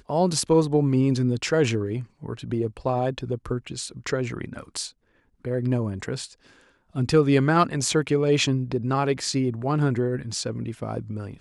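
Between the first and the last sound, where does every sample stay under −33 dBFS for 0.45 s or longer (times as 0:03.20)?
0:04.88–0:05.45
0:06.26–0:06.95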